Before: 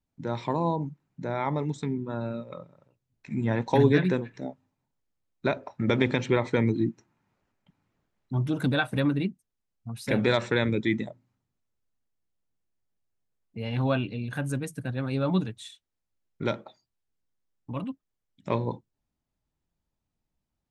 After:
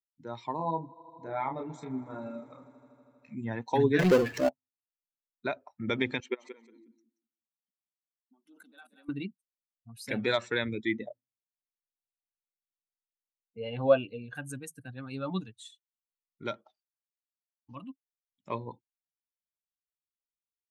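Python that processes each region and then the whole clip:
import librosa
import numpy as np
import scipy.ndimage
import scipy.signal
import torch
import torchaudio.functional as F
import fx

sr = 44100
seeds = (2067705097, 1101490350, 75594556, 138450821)

y = fx.chain(x, sr, fx.air_absorb(metres=52.0),
    fx.doubler(ms=31.0, db=-4),
    fx.echo_swell(ms=80, loudest=5, wet_db=-18), at=(0.56, 3.35))
y = fx.chain(y, sr, fx.peak_eq(hz=580.0, db=9.5, octaves=1.2),
    fx.power_curve(exponent=0.5), at=(3.99, 4.49))
y = fx.chain(y, sr, fx.level_steps(step_db=21),
    fx.brickwall_highpass(low_hz=180.0),
    fx.echo_feedback(ms=179, feedback_pct=26, wet_db=-8.5), at=(6.2, 9.09))
y = fx.chain(y, sr, fx.lowpass(hz=4800.0, slope=12),
    fx.peak_eq(hz=520.0, db=11.5, octaves=0.69), at=(10.95, 14.35))
y = fx.chain(y, sr, fx.cvsd(bps=32000),
    fx.high_shelf(hz=3400.0, db=-9.5), at=(16.65, 17.75))
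y = fx.bin_expand(y, sr, power=1.5)
y = fx.low_shelf(y, sr, hz=200.0, db=-9.5)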